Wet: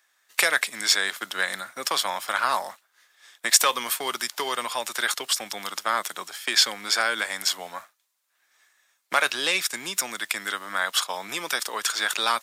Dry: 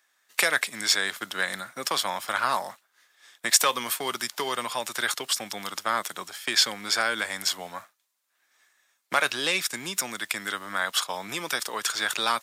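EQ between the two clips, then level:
high-pass filter 350 Hz 6 dB per octave
+2.0 dB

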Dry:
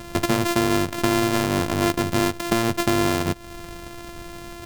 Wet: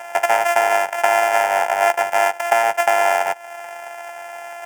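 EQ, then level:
high-pass with resonance 860 Hz, resonance Q 4.9
high-shelf EQ 10,000 Hz −10 dB
phaser with its sweep stopped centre 1,100 Hz, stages 6
+7.5 dB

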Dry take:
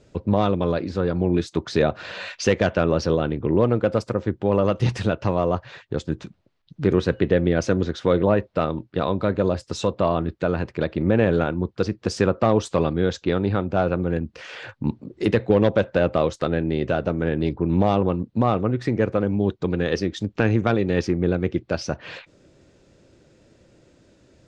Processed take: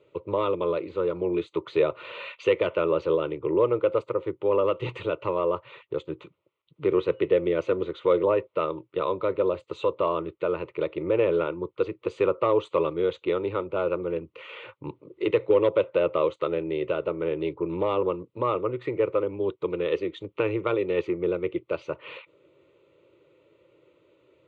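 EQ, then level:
band-pass filter 210–3,200 Hz
parametric band 270 Hz −4.5 dB 0.22 octaves
phaser with its sweep stopped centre 1,100 Hz, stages 8
0.0 dB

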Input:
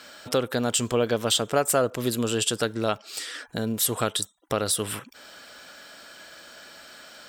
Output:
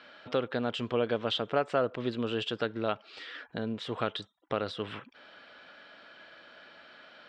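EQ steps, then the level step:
high-pass filter 120 Hz 6 dB per octave
low-pass filter 3,500 Hz 24 dB per octave
−5.0 dB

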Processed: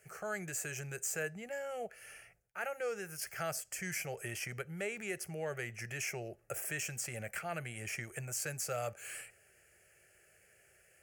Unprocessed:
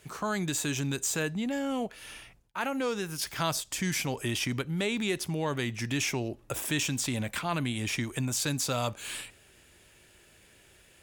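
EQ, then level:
high-pass filter 170 Hz 6 dB per octave
phaser with its sweep stopped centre 1,000 Hz, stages 6
−4.0 dB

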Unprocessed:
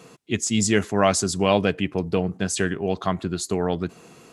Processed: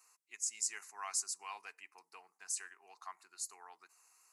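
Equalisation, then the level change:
high-pass filter 890 Hz 24 dB per octave
parametric band 1,500 Hz −14.5 dB 1.3 octaves
phaser with its sweep stopped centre 1,400 Hz, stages 4
−7.0 dB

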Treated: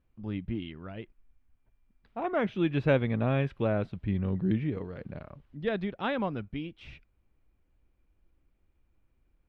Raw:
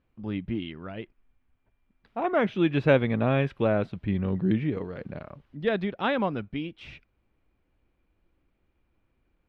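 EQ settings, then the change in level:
low-shelf EQ 91 Hz +10 dB
−5.0 dB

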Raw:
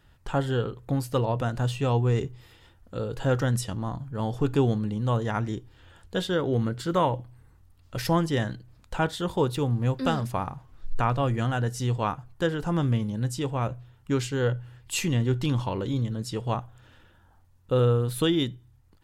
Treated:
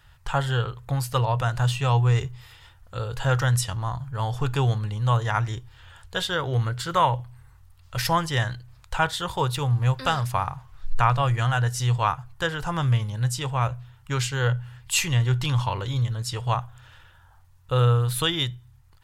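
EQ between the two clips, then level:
drawn EQ curve 130 Hz 0 dB, 230 Hz −18 dB, 980 Hz +2 dB
+4.5 dB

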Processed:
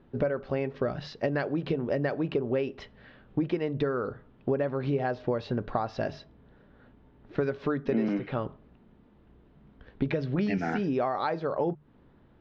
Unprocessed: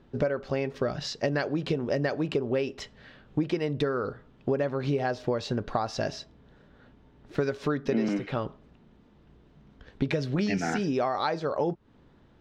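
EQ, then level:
high-frequency loss of the air 260 metres
mains-hum notches 50/100/150 Hz
0.0 dB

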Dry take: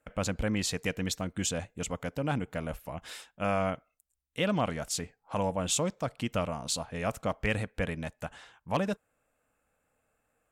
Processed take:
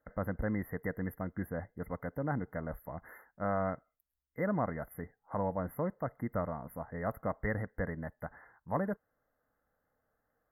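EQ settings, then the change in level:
linear-phase brick-wall band-stop 2,100–11,000 Hz
−3.5 dB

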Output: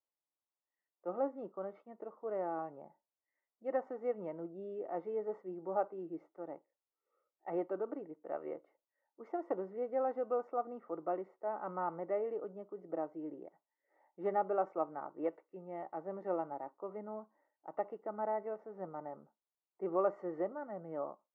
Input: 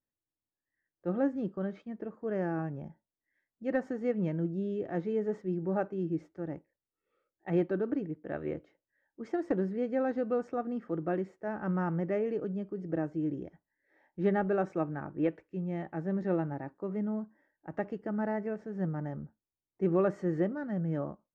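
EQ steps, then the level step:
Savitzky-Golay smoothing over 65 samples
high-pass filter 730 Hz 12 dB per octave
+4.0 dB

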